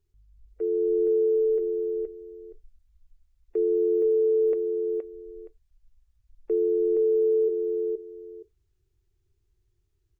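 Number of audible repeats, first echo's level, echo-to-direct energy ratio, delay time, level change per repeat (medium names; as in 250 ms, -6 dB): 2, -4.5 dB, -4.5 dB, 470 ms, -14.5 dB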